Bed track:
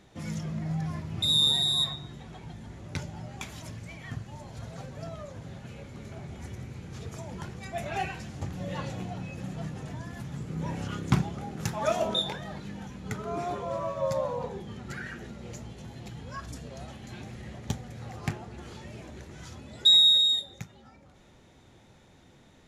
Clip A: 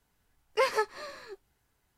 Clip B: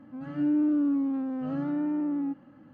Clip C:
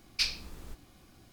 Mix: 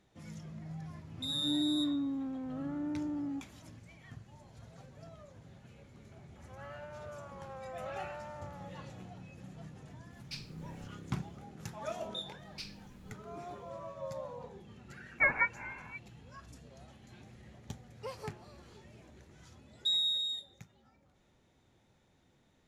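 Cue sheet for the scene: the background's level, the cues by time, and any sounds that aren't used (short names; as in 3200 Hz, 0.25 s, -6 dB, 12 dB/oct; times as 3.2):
bed track -12.5 dB
1.07 add B -8 dB
6.36 add B -1 dB + brick-wall FIR high-pass 490 Hz
10.12 add C -15.5 dB
12.39 add C -16 dB
14.63 add A -1.5 dB + inverted band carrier 2700 Hz
17.46 add A -15.5 dB + bell 1800 Hz -11.5 dB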